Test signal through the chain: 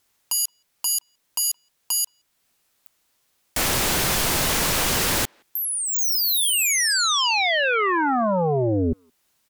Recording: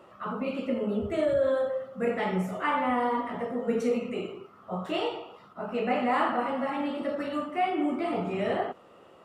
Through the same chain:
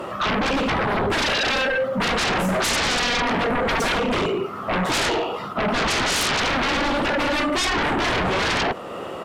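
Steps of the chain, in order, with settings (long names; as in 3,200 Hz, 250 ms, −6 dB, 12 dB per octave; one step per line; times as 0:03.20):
in parallel at −2 dB: downward compressor 4 to 1, threshold −43 dBFS
on the sum: sine wavefolder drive 20 dB, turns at −12 dBFS
far-end echo of a speakerphone 170 ms, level −30 dB
level −6.5 dB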